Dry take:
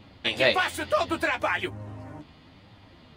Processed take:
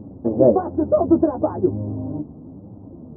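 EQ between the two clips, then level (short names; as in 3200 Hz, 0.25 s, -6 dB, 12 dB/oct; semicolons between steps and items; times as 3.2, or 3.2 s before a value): Gaussian blur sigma 12 samples; bell 280 Hz +13.5 dB 3 oct; +4.5 dB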